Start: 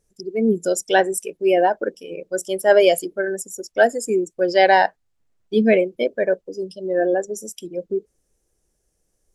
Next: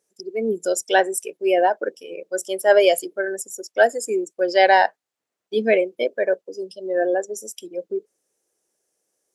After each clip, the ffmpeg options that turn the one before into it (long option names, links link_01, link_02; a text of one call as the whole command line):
ffmpeg -i in.wav -af "highpass=370" out.wav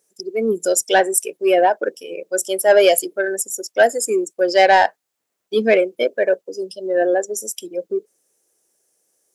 ffmpeg -i in.wav -af "acontrast=49,highshelf=frequency=8000:gain=8.5,volume=-2dB" out.wav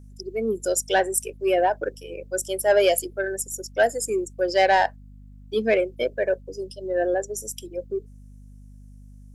ffmpeg -i in.wav -af "aeval=exprs='val(0)+0.0126*(sin(2*PI*50*n/s)+sin(2*PI*2*50*n/s)/2+sin(2*PI*3*50*n/s)/3+sin(2*PI*4*50*n/s)/4+sin(2*PI*5*50*n/s)/5)':channel_layout=same,volume=-6dB" out.wav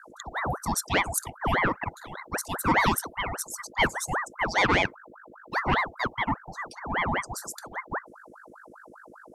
ffmpeg -i in.wav -af "aeval=exprs='val(0)*sin(2*PI*940*n/s+940*0.7/5*sin(2*PI*5*n/s))':channel_layout=same,volume=-1.5dB" out.wav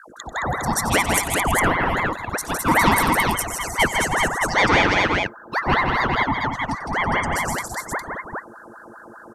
ffmpeg -i in.wav -af "aecho=1:1:92|160|218|328|409:0.178|0.596|0.398|0.251|0.668,volume=4.5dB" out.wav